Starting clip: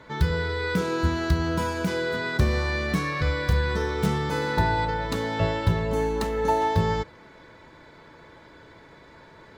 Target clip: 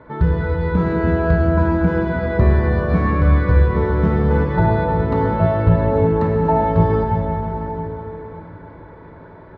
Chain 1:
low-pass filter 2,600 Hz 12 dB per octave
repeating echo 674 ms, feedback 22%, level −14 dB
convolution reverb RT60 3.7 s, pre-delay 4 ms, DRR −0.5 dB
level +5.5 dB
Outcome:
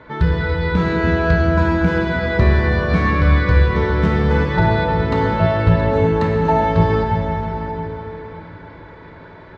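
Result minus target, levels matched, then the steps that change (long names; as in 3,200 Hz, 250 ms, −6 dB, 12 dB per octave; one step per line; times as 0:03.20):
2,000 Hz band +5.5 dB
change: low-pass filter 1,200 Hz 12 dB per octave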